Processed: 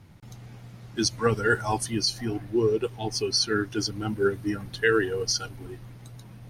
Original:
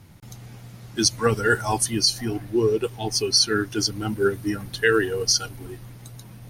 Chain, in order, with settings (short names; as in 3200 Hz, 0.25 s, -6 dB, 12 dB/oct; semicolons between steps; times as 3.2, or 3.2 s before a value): high shelf 6400 Hz -10 dB; gain -2.5 dB